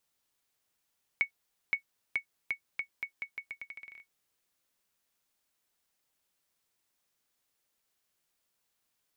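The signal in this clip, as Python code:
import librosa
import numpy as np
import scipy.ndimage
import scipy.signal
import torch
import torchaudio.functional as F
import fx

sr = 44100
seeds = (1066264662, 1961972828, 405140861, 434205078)

y = fx.bouncing_ball(sr, first_gap_s=0.52, ratio=0.82, hz=2220.0, decay_ms=98.0, level_db=-17.0)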